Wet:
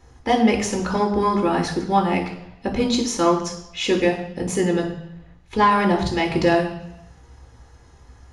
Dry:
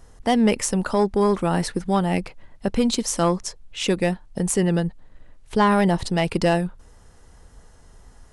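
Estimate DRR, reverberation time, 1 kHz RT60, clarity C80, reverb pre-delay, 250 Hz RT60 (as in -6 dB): 0.5 dB, 0.80 s, 0.80 s, 11.0 dB, 3 ms, 0.80 s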